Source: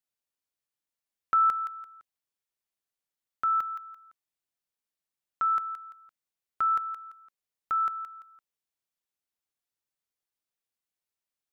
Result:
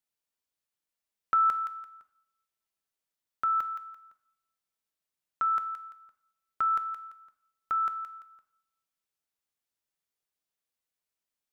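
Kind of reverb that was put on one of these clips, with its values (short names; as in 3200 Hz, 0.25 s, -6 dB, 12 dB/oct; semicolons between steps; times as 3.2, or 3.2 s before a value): two-slope reverb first 0.64 s, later 1.6 s, from -25 dB, DRR 9.5 dB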